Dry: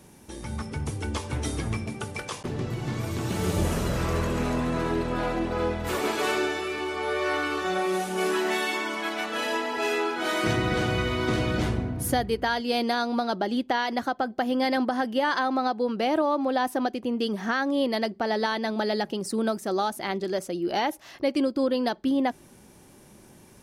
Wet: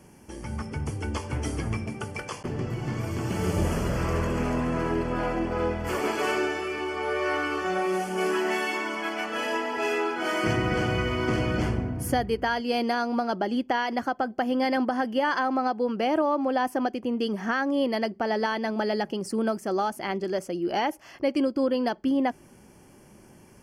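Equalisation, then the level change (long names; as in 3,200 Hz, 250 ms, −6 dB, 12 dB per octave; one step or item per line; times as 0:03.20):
Butterworth band-reject 3,800 Hz, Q 3.9
high-shelf EQ 6,400 Hz −6 dB
0.0 dB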